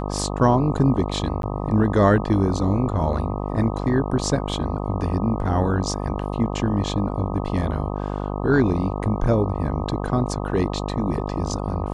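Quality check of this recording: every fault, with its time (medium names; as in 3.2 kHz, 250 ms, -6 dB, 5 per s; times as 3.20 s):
buzz 50 Hz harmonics 25 -27 dBFS
1.42–1.43 s: dropout 12 ms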